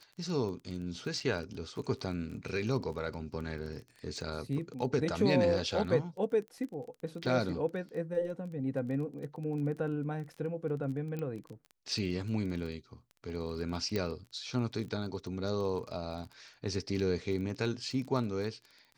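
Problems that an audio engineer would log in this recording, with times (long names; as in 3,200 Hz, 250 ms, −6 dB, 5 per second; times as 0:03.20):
surface crackle 19 per second −40 dBFS
0:01.20–0:01.21: drop-out 5.2 ms
0:11.19: click −26 dBFS
0:13.96: click −19 dBFS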